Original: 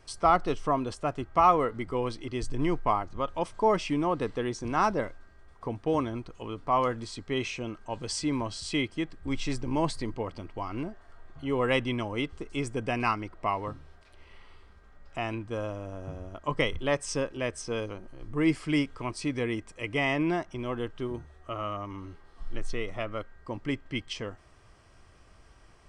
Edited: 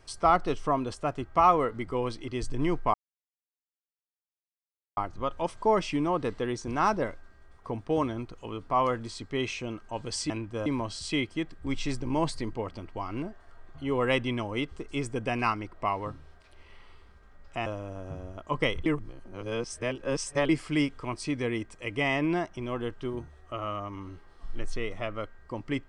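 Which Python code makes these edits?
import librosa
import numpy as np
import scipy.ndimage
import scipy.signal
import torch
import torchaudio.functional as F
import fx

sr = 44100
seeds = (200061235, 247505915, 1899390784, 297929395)

y = fx.edit(x, sr, fx.insert_silence(at_s=2.94, length_s=2.03),
    fx.move(start_s=15.27, length_s=0.36, to_s=8.27),
    fx.reverse_span(start_s=16.83, length_s=1.63), tone=tone)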